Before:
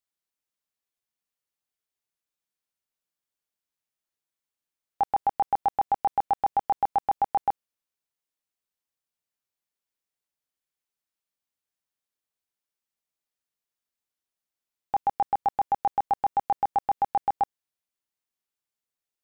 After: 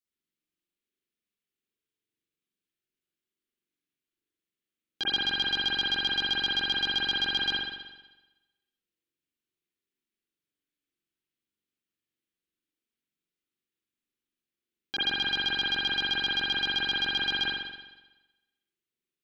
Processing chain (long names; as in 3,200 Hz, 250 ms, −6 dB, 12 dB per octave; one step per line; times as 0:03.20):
phase distortion by the signal itself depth 0.79 ms
drawn EQ curve 110 Hz 0 dB, 180 Hz +5 dB, 350 Hz +10 dB, 820 Hz −18 dB, 1,200 Hz −5 dB, 3,000 Hz +3 dB
spring reverb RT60 1.1 s, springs 43 ms, chirp 40 ms, DRR −9 dB
level −8.5 dB